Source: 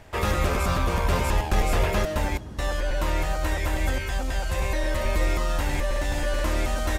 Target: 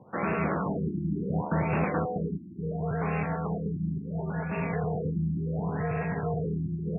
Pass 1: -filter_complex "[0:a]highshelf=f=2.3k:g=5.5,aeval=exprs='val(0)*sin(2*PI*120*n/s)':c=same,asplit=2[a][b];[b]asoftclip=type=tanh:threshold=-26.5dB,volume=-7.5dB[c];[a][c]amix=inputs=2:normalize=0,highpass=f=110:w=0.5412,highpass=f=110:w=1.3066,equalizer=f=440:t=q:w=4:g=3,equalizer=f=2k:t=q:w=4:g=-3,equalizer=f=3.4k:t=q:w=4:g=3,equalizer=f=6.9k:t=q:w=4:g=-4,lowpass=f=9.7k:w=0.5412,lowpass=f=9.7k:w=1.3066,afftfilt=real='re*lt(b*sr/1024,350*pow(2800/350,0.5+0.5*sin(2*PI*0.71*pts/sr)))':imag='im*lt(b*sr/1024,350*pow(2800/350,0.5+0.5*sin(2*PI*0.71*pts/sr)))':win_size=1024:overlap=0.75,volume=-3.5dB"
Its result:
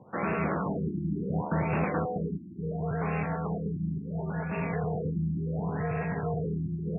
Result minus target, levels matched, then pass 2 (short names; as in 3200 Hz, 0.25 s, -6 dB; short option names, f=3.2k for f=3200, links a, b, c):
soft clip: distortion +10 dB
-filter_complex "[0:a]highshelf=f=2.3k:g=5.5,aeval=exprs='val(0)*sin(2*PI*120*n/s)':c=same,asplit=2[a][b];[b]asoftclip=type=tanh:threshold=-17dB,volume=-7.5dB[c];[a][c]amix=inputs=2:normalize=0,highpass=f=110:w=0.5412,highpass=f=110:w=1.3066,equalizer=f=440:t=q:w=4:g=3,equalizer=f=2k:t=q:w=4:g=-3,equalizer=f=3.4k:t=q:w=4:g=3,equalizer=f=6.9k:t=q:w=4:g=-4,lowpass=f=9.7k:w=0.5412,lowpass=f=9.7k:w=1.3066,afftfilt=real='re*lt(b*sr/1024,350*pow(2800/350,0.5+0.5*sin(2*PI*0.71*pts/sr)))':imag='im*lt(b*sr/1024,350*pow(2800/350,0.5+0.5*sin(2*PI*0.71*pts/sr)))':win_size=1024:overlap=0.75,volume=-3.5dB"